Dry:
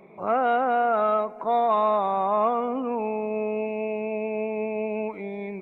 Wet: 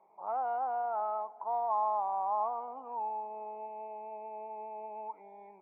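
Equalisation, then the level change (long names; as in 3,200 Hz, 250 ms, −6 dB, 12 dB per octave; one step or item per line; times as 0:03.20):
resonant band-pass 870 Hz, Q 8
high-frequency loss of the air 120 metres
0.0 dB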